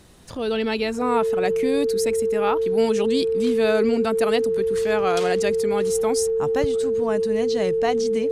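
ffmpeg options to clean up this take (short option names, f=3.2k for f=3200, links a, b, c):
-af "bandreject=f=450:w=30"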